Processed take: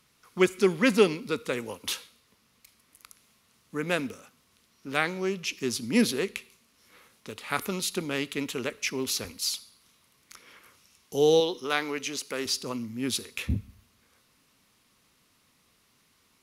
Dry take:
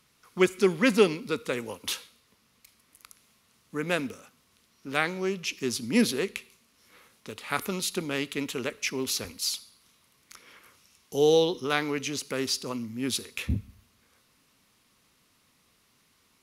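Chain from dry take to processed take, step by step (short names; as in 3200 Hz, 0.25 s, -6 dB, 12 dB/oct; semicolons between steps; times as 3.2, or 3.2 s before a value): 11.4–12.46 bell 91 Hz -13 dB 2.3 oct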